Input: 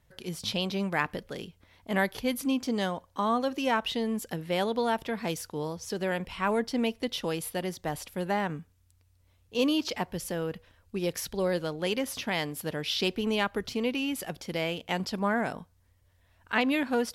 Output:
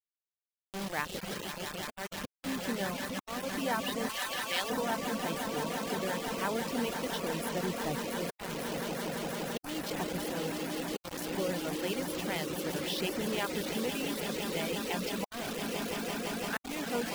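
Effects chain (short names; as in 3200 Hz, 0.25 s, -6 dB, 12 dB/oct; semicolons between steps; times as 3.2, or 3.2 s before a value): Wiener smoothing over 9 samples; 7.46–8.09 low shelf 390 Hz +6.5 dB; swelling echo 0.17 s, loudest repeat 8, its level -10.5 dB; on a send at -12.5 dB: reverb RT60 4.7 s, pre-delay 50 ms; on the sum: auto swell 0.428 s; in parallel at +1 dB: level quantiser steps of 20 dB; 4.09–4.7 on the sum: weighting filter ITU-R 468; bit-crush 5-bit; reverb removal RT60 0.67 s; gain -7.5 dB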